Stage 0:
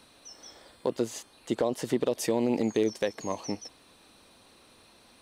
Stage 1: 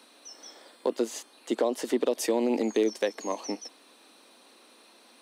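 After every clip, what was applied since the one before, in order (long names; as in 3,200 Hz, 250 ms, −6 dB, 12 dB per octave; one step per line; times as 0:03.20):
Butterworth high-pass 230 Hz 36 dB per octave
level +1.5 dB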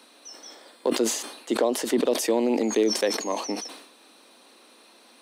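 level that may fall only so fast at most 71 dB per second
level +2.5 dB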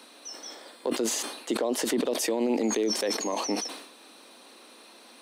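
brickwall limiter −21 dBFS, peak gain reduction 10.5 dB
level +2.5 dB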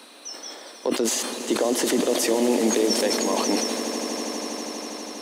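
echo that builds up and dies away 81 ms, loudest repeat 8, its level −15 dB
level +4.5 dB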